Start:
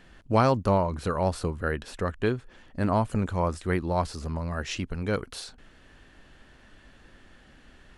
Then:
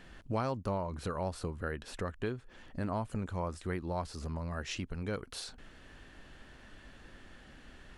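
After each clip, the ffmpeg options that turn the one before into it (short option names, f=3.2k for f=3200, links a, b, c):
-af "acompressor=threshold=-40dB:ratio=2"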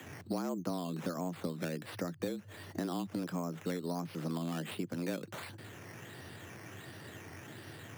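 -filter_complex "[0:a]acrossover=split=81|380[a][b][c];[a]acompressor=threshold=-58dB:ratio=4[d];[b]acompressor=threshold=-41dB:ratio=4[e];[c]acompressor=threshold=-49dB:ratio=4[f];[d][e][f]amix=inputs=3:normalize=0,acrusher=samples=9:mix=1:aa=0.000001:lfo=1:lforange=5.4:lforate=1.4,afreqshift=84,volume=6dB"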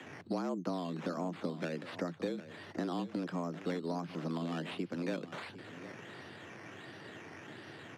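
-filter_complex "[0:a]acrossover=split=790[a][b];[b]crystalizer=i=0.5:c=0[c];[a][c]amix=inputs=2:normalize=0,highpass=170,lowpass=4k,aecho=1:1:756:0.2,volume=1dB"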